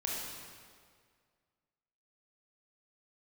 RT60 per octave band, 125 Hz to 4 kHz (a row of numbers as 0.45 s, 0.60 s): 2.0 s, 1.9 s, 2.0 s, 1.9 s, 1.7 s, 1.6 s